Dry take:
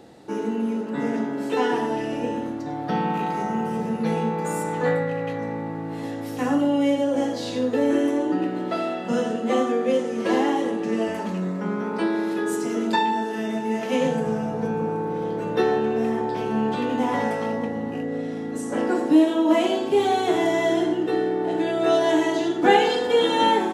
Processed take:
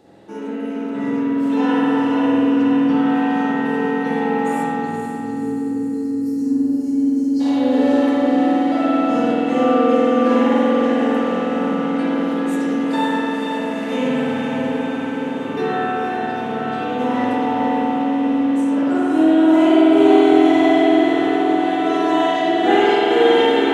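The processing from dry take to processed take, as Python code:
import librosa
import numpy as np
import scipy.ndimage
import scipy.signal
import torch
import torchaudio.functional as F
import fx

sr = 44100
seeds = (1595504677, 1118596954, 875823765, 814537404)

y = fx.echo_diffused(x, sr, ms=504, feedback_pct=74, wet_db=-5.5)
y = fx.spec_box(y, sr, start_s=4.66, length_s=2.74, low_hz=490.0, high_hz=4100.0, gain_db=-27)
y = fx.rev_spring(y, sr, rt60_s=3.4, pass_ms=(47,), chirp_ms=55, drr_db=-9.0)
y = y * librosa.db_to_amplitude(-5.5)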